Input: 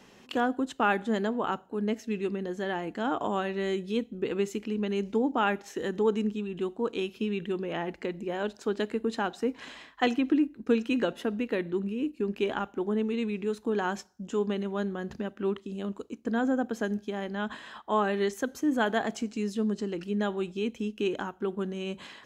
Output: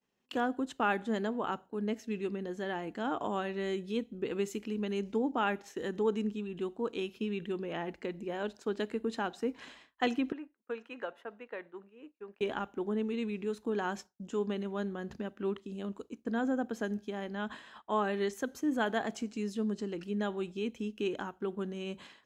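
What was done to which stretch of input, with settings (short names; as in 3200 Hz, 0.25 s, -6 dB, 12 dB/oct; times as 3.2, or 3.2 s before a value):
4.33–4.99 high shelf 6700 Hz +5.5 dB
10.32–12.41 three-band isolator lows -21 dB, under 540 Hz, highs -16 dB, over 2100 Hz
whole clip: expander -41 dBFS; gain -4.5 dB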